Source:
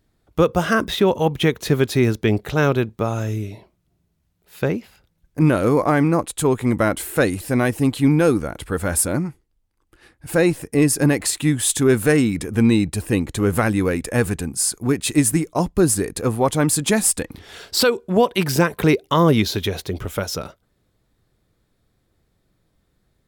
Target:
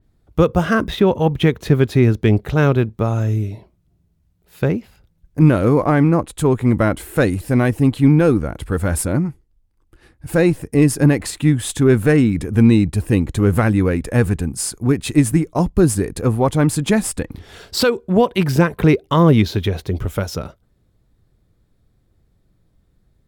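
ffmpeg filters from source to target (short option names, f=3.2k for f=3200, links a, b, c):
-filter_complex "[0:a]lowshelf=f=180:g=9,asplit=2[a][b];[b]adynamicsmooth=sensitivity=3.5:basefreq=1.5k,volume=-9dB[c];[a][c]amix=inputs=2:normalize=0,adynamicequalizer=threshold=0.0178:dfrequency=3900:dqfactor=0.7:tfrequency=3900:tqfactor=0.7:attack=5:release=100:ratio=0.375:range=3:mode=cutabove:tftype=highshelf,volume=-2.5dB"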